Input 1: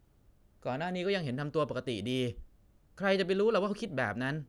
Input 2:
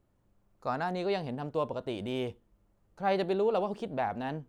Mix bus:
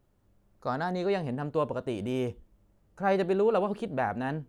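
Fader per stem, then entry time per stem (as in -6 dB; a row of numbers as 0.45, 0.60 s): -7.0, +0.5 dB; 0.00, 0.00 s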